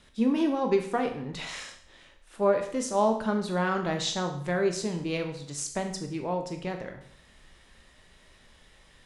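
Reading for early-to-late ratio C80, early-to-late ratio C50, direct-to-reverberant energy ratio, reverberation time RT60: 12.0 dB, 8.5 dB, 4.5 dB, 0.60 s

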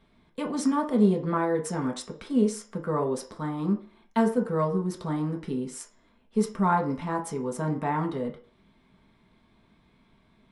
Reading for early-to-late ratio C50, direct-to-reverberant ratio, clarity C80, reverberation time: 11.5 dB, 0.5 dB, 16.0 dB, 0.45 s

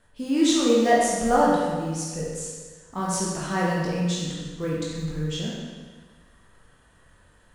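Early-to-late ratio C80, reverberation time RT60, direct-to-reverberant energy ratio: 1.0 dB, 1.5 s, -6.0 dB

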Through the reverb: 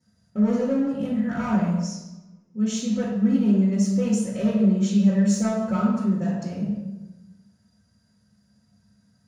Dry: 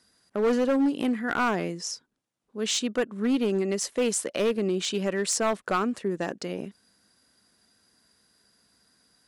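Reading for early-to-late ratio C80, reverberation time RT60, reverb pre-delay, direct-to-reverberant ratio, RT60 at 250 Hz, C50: 3.5 dB, 1.0 s, 3 ms, -11.0 dB, 1.5 s, 0.0 dB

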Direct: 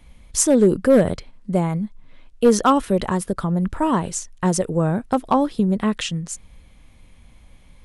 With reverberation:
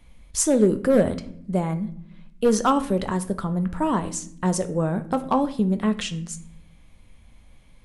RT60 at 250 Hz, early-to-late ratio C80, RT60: 1.2 s, 18.5 dB, 0.65 s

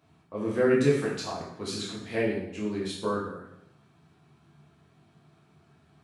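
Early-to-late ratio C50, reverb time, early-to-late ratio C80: 3.0 dB, 0.80 s, 6.5 dB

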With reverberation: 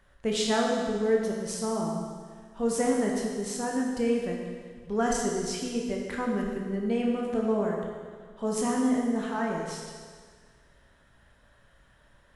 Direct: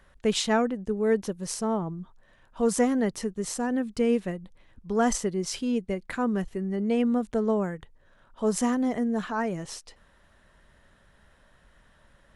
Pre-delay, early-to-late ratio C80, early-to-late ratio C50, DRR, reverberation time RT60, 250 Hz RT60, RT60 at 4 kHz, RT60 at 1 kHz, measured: 16 ms, 3.0 dB, 1.5 dB, -1.0 dB, 1.7 s, 1.7 s, 1.7 s, 1.7 s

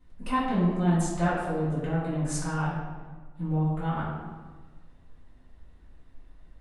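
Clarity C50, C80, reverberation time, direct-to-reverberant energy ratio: -0.5 dB, 2.5 dB, 1.4 s, -11.5 dB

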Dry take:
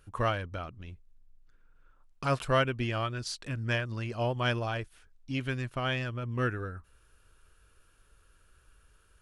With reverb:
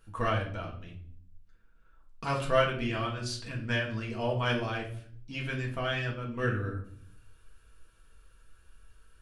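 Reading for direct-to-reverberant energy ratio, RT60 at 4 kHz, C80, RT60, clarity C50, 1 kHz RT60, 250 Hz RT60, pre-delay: -2.5 dB, 0.45 s, 12.5 dB, 0.55 s, 8.5 dB, 0.50 s, 0.90 s, 4 ms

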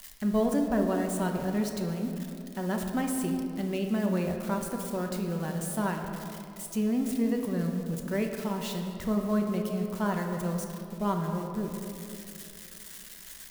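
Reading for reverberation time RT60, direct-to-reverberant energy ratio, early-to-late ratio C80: 2.7 s, 2.5 dB, 5.5 dB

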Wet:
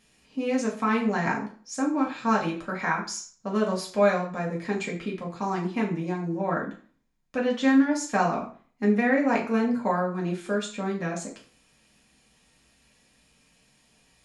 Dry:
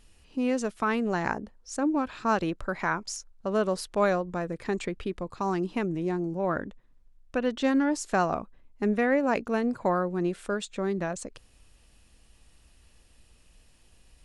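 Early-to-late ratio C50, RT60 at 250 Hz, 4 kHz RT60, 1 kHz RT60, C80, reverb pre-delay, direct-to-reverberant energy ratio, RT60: 9.0 dB, 0.45 s, 0.40 s, 0.45 s, 13.5 dB, 3 ms, -3.0 dB, 0.45 s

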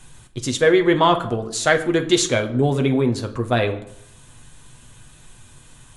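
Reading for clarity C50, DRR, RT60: 13.0 dB, 4.5 dB, 0.70 s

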